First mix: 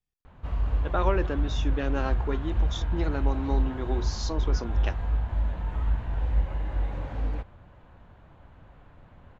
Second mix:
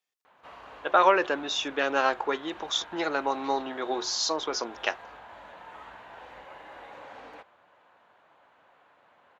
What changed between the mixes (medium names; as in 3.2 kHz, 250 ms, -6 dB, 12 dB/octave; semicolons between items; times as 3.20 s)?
speech +10.0 dB; master: add high-pass 620 Hz 12 dB/octave